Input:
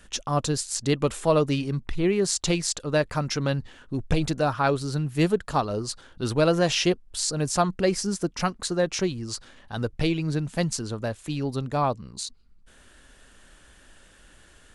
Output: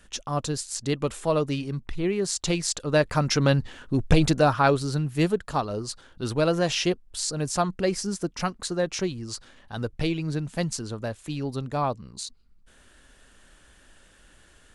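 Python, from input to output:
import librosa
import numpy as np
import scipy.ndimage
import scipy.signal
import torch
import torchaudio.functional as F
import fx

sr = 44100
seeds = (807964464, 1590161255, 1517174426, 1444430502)

y = fx.gain(x, sr, db=fx.line((2.28, -3.0), (3.42, 5.0), (4.31, 5.0), (5.41, -2.0)))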